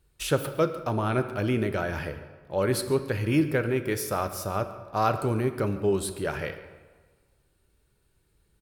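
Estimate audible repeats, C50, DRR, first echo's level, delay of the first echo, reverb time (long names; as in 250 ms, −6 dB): 1, 10.5 dB, 8.5 dB, −19.0 dB, 143 ms, 1.5 s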